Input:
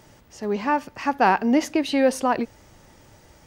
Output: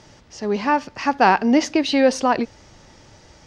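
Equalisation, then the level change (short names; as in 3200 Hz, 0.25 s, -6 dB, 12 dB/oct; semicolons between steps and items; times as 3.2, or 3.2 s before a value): synth low-pass 5400 Hz, resonance Q 1.7; +3.0 dB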